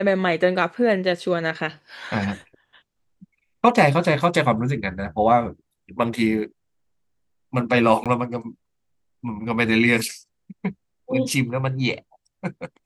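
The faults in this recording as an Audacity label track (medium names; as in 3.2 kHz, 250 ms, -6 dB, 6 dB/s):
8.040000	8.060000	dropout 17 ms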